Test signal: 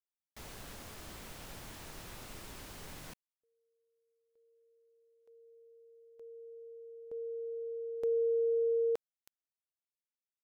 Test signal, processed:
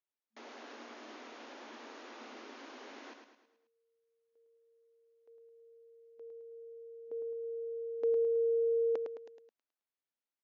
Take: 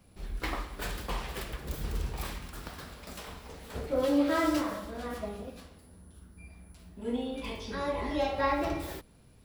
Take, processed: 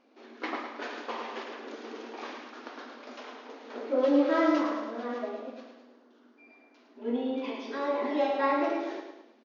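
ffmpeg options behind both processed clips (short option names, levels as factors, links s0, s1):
-af "aemphasis=mode=reproduction:type=75fm,aecho=1:1:107|214|321|428|535:0.473|0.218|0.1|0.0461|0.0212,afftfilt=real='re*between(b*sr/4096,220,6900)':imag='im*between(b*sr/4096,220,6900)':win_size=4096:overlap=0.75,volume=1.19"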